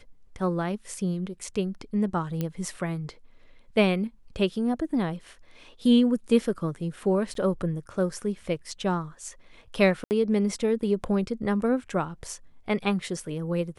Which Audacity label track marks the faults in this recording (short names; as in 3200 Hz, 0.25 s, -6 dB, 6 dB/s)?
2.410000	2.410000	pop -16 dBFS
7.340000	7.350000	gap 13 ms
10.040000	10.110000	gap 69 ms